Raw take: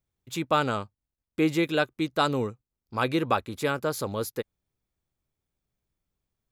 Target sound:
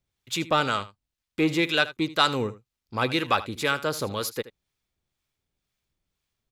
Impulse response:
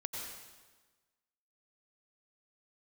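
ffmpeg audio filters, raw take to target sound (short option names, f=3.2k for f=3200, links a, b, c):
-filter_complex "[0:a]acrossover=split=820[a][b];[a]aeval=exprs='val(0)*(1-0.5/2+0.5/2*cos(2*PI*2*n/s))':c=same[c];[b]aeval=exprs='val(0)*(1-0.5/2-0.5/2*cos(2*PI*2*n/s))':c=same[d];[c][d]amix=inputs=2:normalize=0,asplit=2[e][f];[f]asoftclip=type=tanh:threshold=-24.5dB,volume=-5.5dB[g];[e][g]amix=inputs=2:normalize=0,equalizer=f=3.4k:w=0.46:g=8.5,aecho=1:1:78:0.15,volume=-1.5dB"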